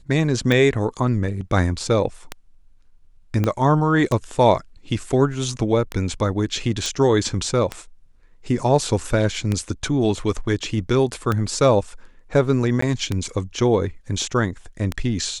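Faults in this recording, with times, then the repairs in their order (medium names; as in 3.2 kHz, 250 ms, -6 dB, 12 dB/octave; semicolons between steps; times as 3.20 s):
tick 33 1/3 rpm -9 dBFS
3.44 s: pop -9 dBFS
6.86 s: pop
12.81–12.82 s: dropout 14 ms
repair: de-click; interpolate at 12.81 s, 14 ms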